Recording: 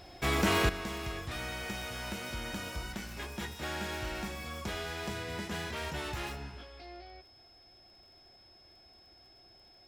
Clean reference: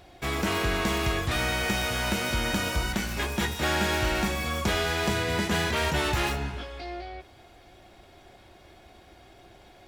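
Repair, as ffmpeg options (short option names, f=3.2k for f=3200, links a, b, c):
-af "adeclick=t=4,bandreject=f=5.2k:w=30,asetnsamples=n=441:p=0,asendcmd='0.69 volume volume 11.5dB',volume=0dB"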